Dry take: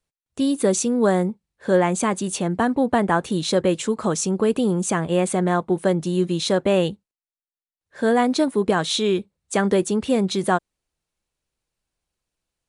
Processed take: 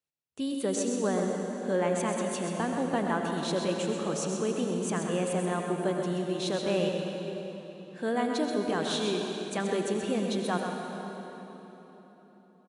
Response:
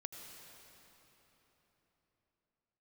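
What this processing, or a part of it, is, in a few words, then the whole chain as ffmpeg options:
PA in a hall: -filter_complex "[0:a]highpass=110,equalizer=frequency=2800:width_type=o:width=0.44:gain=4,aecho=1:1:129:0.422[link_01];[1:a]atrim=start_sample=2205[link_02];[link_01][link_02]afir=irnorm=-1:irlink=0,volume=-6.5dB"

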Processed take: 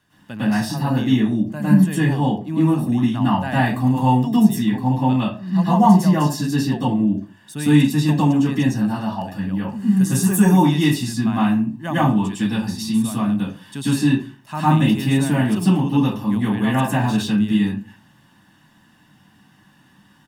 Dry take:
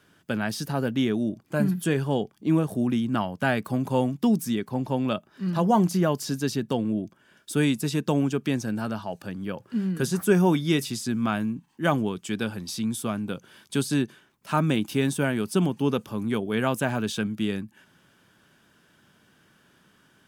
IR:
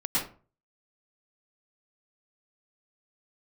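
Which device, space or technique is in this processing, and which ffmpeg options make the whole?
microphone above a desk: -filter_complex "[0:a]asettb=1/sr,asplit=3[link_01][link_02][link_03];[link_01]atrim=end=9.684[link_04];[link_02]atrim=start=9.68:end=10.52,asetpts=PTS-STARTPTS,afade=type=in:duration=0.004:curve=qsin,afade=type=out:start_time=0.836:duration=0.004:curve=qsin,highshelf=frequency=5700:width_type=q:width=1.5:gain=7[link_05];[link_03]atrim=start=10.516[link_06];[link_04][link_05]acrossfade=duration=0.004:curve1=hsin:curve2=qsin[link_07];[link_07][link_06]acrossfade=duration=0.004:curve1=qsin:curve2=hsin,aecho=1:1:1.1:0.58[link_08];[1:a]atrim=start_sample=2205[link_09];[link_08][link_09]afir=irnorm=-1:irlink=0,volume=-4.5dB"

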